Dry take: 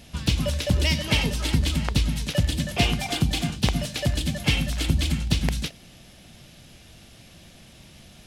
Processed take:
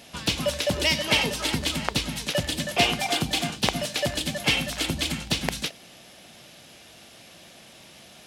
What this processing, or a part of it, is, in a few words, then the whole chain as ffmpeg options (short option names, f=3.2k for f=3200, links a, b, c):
filter by subtraction: -filter_complex "[0:a]asplit=2[a][b];[b]lowpass=620,volume=-1[c];[a][c]amix=inputs=2:normalize=0,volume=2.5dB"